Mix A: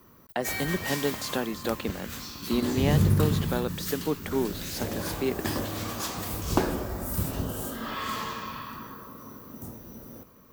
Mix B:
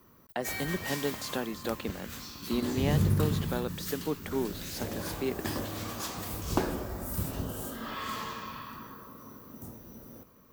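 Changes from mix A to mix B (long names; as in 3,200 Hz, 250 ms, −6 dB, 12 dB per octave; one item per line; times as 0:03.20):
speech −4.0 dB
background −4.0 dB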